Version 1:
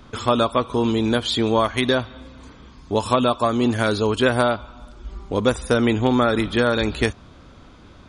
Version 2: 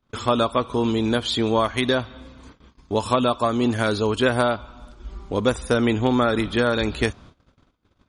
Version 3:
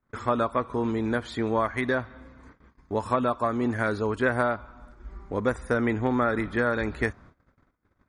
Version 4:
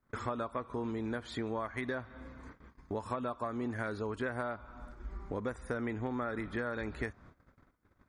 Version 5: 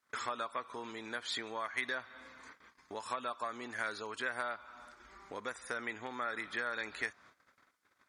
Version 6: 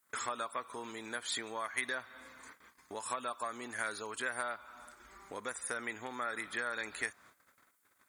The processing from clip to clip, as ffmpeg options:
-af "agate=range=0.0355:threshold=0.00794:ratio=16:detection=peak,volume=0.841"
-af "highshelf=f=2400:t=q:w=3:g=-7,volume=0.531"
-af "acompressor=threshold=0.0141:ratio=3"
-af "bandpass=f=5300:t=q:w=0.54:csg=0,volume=2.99"
-af "aexciter=amount=4.2:drive=5.8:freq=7400"

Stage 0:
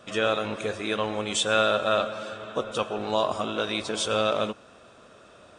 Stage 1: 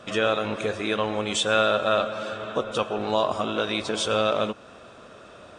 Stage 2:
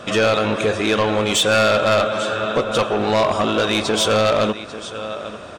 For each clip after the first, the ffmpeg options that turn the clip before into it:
-filter_complex "[0:a]highshelf=f=7500:g=-7.5,asplit=2[s0][s1];[s1]acompressor=threshold=0.02:ratio=6,volume=0.891[s2];[s0][s2]amix=inputs=2:normalize=0"
-af "aecho=1:1:844:0.158,aeval=exprs='0.473*(cos(1*acos(clip(val(0)/0.473,-1,1)))-cos(1*PI/2))+0.211*(cos(5*acos(clip(val(0)/0.473,-1,1)))-cos(5*PI/2))':c=same,asoftclip=type=tanh:threshold=0.355"

